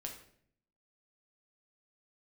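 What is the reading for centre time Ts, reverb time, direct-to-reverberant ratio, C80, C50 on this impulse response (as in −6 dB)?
23 ms, 0.60 s, 0.5 dB, 10.5 dB, 7.0 dB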